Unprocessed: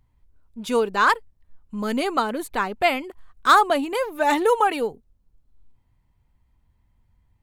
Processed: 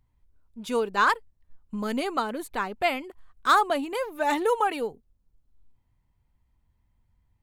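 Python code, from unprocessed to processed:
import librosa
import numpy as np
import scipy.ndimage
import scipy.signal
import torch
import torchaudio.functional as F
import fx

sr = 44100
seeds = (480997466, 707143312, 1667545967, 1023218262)

y = fx.transient(x, sr, attack_db=5, sustain_db=0, at=(0.88, 1.99), fade=0.02)
y = y * librosa.db_to_amplitude(-5.0)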